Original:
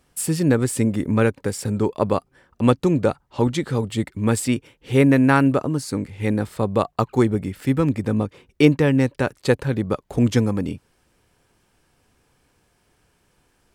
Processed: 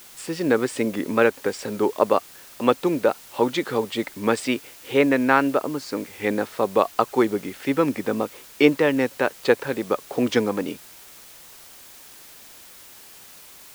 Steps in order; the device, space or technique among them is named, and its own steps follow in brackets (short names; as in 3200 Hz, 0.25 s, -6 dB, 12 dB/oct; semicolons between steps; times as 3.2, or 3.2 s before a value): dictaphone (BPF 370–4400 Hz; AGC gain up to 4.5 dB; wow and flutter; white noise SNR 22 dB)